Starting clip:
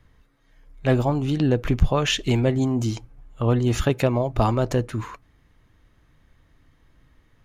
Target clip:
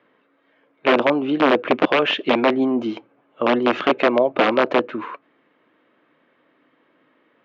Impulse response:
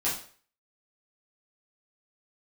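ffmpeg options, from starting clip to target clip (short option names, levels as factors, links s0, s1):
-af "aeval=exprs='(mod(4.47*val(0)+1,2)-1)/4.47':c=same,highpass=f=260:w=0.5412,highpass=f=260:w=1.3066,equalizer=f=560:t=q:w=4:g=4,equalizer=f=820:t=q:w=4:g=-3,equalizer=f=1900:t=q:w=4:g=-4,lowpass=f=2900:w=0.5412,lowpass=f=2900:w=1.3066,volume=2.11"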